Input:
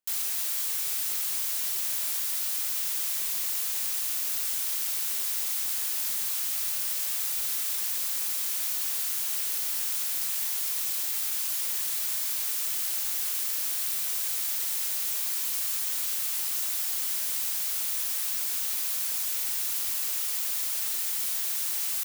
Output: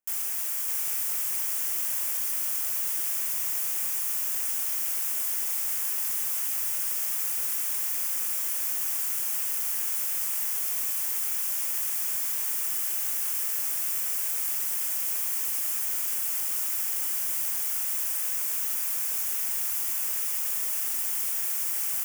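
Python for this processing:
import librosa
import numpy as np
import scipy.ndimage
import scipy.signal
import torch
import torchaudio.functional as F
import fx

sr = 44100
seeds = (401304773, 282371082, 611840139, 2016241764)

y = fx.peak_eq(x, sr, hz=4000.0, db=-15.0, octaves=0.53)
y = y + 10.0 ** (-4.5 / 20.0) * np.pad(y, (int(606 * sr / 1000.0), 0))[:len(y)]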